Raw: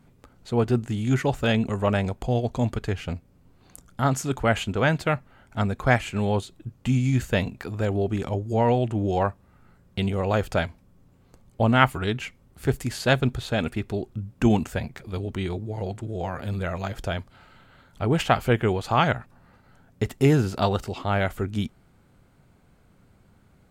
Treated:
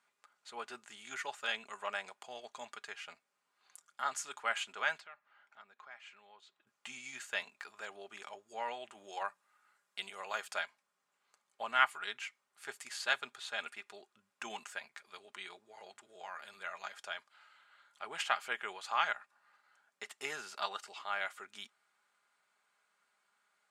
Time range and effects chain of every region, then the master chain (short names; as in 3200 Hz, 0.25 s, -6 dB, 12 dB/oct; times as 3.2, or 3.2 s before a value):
5–6.67 compressor 3:1, threshold -41 dBFS + air absorption 130 m
8.92–10.58 high shelf 7400 Hz +8.5 dB + notches 60/120/180 Hz
whole clip: Chebyshev band-pass 1200–9000 Hz, order 2; comb 4.9 ms, depth 40%; gain -7.5 dB